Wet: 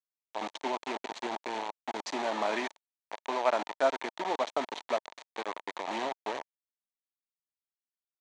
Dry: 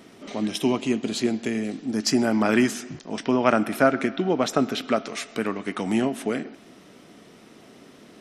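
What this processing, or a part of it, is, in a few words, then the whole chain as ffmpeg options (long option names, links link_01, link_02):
hand-held game console: -filter_complex "[0:a]asplit=3[link_01][link_02][link_03];[link_01]afade=type=out:start_time=2.58:duration=0.02[link_04];[link_02]asubboost=boost=8.5:cutoff=55,afade=type=in:start_time=2.58:duration=0.02,afade=type=out:start_time=3.82:duration=0.02[link_05];[link_03]afade=type=in:start_time=3.82:duration=0.02[link_06];[link_04][link_05][link_06]amix=inputs=3:normalize=0,acrusher=bits=3:mix=0:aa=0.000001,highpass=490,equalizer=frequency=630:width_type=q:width=4:gain=4,equalizer=frequency=920:width_type=q:width=4:gain=9,equalizer=frequency=1400:width_type=q:width=4:gain=-6,equalizer=frequency=2800:width_type=q:width=4:gain=-4,equalizer=frequency=5100:width_type=q:width=4:gain=-10,lowpass=frequency=5600:width=0.5412,lowpass=frequency=5600:width=1.3066,volume=-8dB"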